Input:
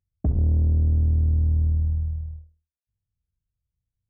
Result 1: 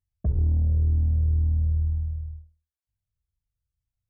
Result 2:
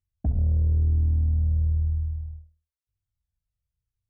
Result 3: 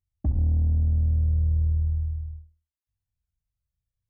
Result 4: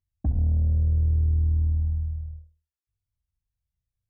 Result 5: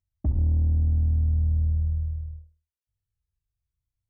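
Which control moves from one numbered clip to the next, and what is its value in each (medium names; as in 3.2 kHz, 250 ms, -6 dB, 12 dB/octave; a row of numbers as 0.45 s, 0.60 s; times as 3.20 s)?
Shepard-style flanger, rate: 2.1 Hz, 0.96 Hz, 0.38 Hz, 0.63 Hz, 0.24 Hz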